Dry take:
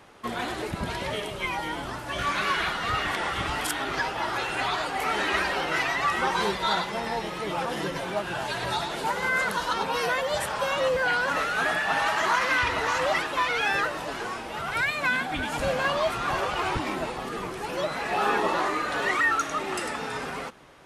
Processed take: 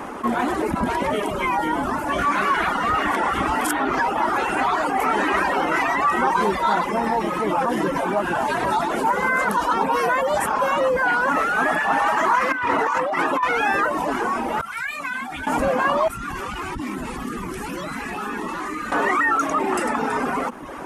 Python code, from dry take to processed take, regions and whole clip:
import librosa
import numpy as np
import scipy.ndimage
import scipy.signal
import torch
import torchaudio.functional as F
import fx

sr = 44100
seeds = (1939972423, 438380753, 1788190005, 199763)

y = fx.chain(x, sr, fx.highpass(hz=96.0, slope=24),
    fx.high_shelf(hz=4800.0, db=-5.0),
    fx.over_compress(threshold_db=-28.0, ratio=-0.5), at=(12.52, 13.43))
y = fx.chain(y, sr, fx.tone_stack(knobs='5-5-5'),
    fx.ensemble(), at=(14.61, 15.47))
y = fx.chain(y, sr, fx.tone_stack(knobs='6-0-2'),
    fx.env_flatten(amount_pct=70), at=(16.08, 18.92))
y = fx.dereverb_blind(y, sr, rt60_s=0.59)
y = fx.graphic_eq_10(y, sr, hz=(125, 250, 1000, 4000), db=(-7, 11, 7, -10))
y = fx.env_flatten(y, sr, amount_pct=50)